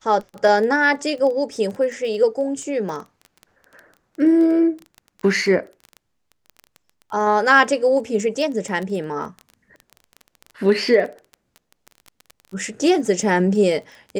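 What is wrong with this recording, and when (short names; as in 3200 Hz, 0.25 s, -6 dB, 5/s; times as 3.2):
crackle 15/s -27 dBFS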